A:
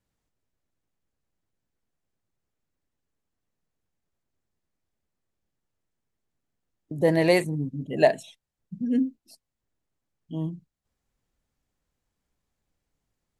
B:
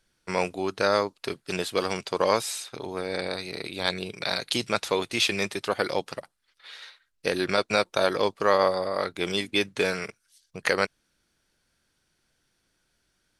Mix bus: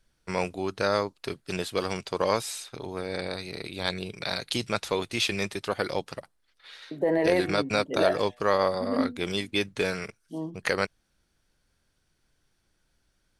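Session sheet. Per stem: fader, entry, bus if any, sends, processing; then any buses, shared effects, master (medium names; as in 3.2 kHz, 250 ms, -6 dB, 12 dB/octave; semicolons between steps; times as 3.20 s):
+2.5 dB, 0.00 s, no send, three-band isolator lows -24 dB, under 290 Hz, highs -14 dB, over 2.2 kHz; de-hum 121.8 Hz, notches 37; peak limiter -19 dBFS, peak gain reduction 12 dB
-3.0 dB, 0.00 s, no send, none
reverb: none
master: bass shelf 120 Hz +11 dB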